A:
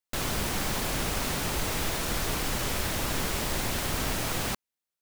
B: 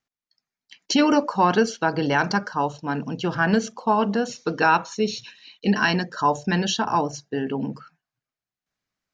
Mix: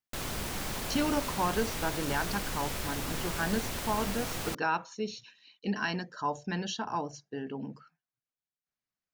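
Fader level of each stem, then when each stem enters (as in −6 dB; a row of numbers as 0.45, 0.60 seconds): −6.0, −11.5 decibels; 0.00, 0.00 seconds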